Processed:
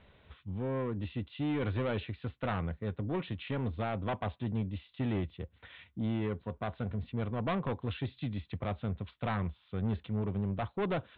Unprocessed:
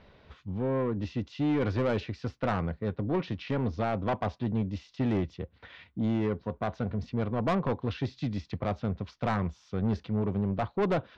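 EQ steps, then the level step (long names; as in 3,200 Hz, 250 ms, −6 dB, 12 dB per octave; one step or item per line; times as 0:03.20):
Butterworth low-pass 3,800 Hz 72 dB per octave
parametric band 76 Hz +5 dB 1.8 octaves
high-shelf EQ 2,200 Hz +8.5 dB
−6.5 dB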